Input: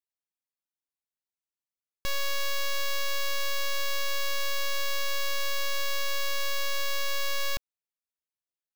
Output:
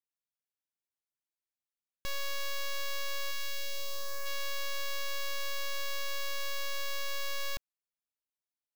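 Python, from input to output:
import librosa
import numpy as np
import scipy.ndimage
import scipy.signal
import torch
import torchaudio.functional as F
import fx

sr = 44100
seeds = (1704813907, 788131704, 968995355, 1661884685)

y = fx.peak_eq(x, sr, hz=fx.line((3.3, 540.0), (4.25, 3600.0)), db=-13.5, octaves=0.86, at=(3.3, 4.25), fade=0.02)
y = y * librosa.db_to_amplitude(-6.0)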